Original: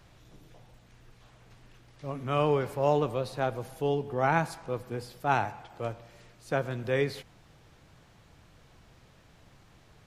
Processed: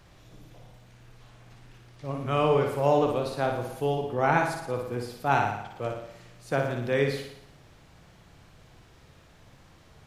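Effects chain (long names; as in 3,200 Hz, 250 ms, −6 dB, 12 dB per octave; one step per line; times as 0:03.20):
flutter between parallel walls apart 9.9 metres, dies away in 0.7 s
level +1.5 dB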